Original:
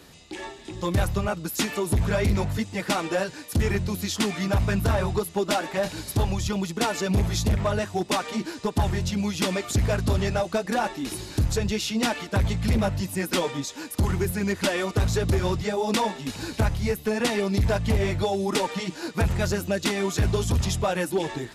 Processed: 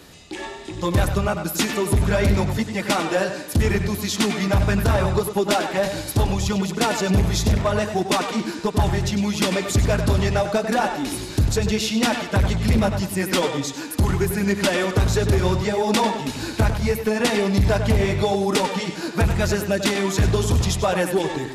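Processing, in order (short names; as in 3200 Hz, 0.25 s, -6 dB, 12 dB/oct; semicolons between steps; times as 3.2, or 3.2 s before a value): tape echo 97 ms, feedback 41%, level -6.5 dB, low-pass 4800 Hz; gain +4 dB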